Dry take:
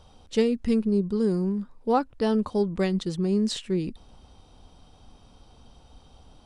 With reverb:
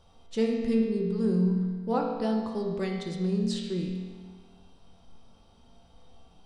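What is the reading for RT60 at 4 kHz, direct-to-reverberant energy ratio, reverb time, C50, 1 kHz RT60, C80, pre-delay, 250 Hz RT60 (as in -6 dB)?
1.4 s, -1.0 dB, 1.6 s, 2.5 dB, 1.6 s, 4.0 dB, 4 ms, 1.6 s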